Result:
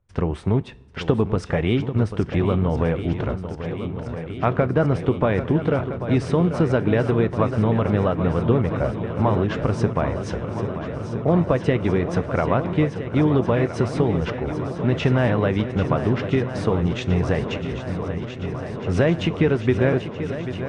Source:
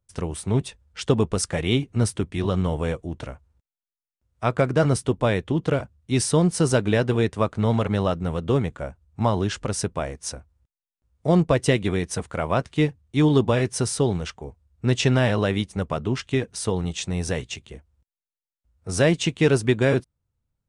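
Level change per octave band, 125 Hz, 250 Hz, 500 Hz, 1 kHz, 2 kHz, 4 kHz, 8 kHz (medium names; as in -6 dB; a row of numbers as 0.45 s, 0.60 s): +2.5 dB, +2.5 dB, +2.0 dB, +2.5 dB, 0.0 dB, -5.0 dB, under -15 dB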